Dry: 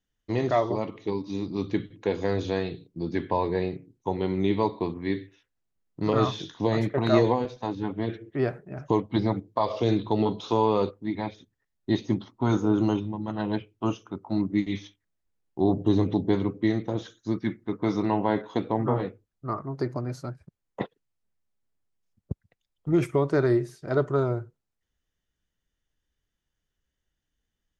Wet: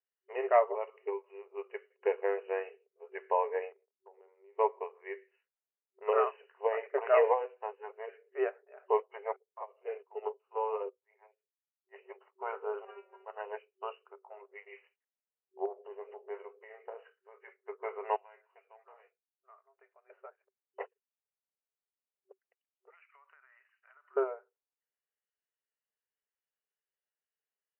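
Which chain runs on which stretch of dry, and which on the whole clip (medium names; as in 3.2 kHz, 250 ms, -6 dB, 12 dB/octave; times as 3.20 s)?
3.72–4.59 s: gate -51 dBFS, range -15 dB + peaking EQ 3.2 kHz -10 dB 2.2 oct + compression 8:1, threshold -39 dBFS
9.36–11.96 s: treble shelf 4.9 kHz -11 dB + bands offset in time highs, lows 40 ms, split 670 Hz + upward expansion 2.5:1, over -35 dBFS
12.85–13.25 s: waveshaping leveller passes 3 + peaking EQ 190 Hz +14.5 dB 1.6 oct + inharmonic resonator 190 Hz, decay 0.33 s, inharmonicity 0.002
15.65–17.48 s: doubling 24 ms -10.5 dB + compression 4:1, threshold -25 dBFS
18.16–20.10 s: differentiator + hard clipper -37.5 dBFS + small resonant body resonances 680/2400 Hz, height 8 dB
22.90–24.17 s: high-pass 1.2 kHz 24 dB/octave + compression 16:1, threshold -47 dBFS
whole clip: FFT band-pass 380–3000 Hz; upward expansion 1.5:1, over -41 dBFS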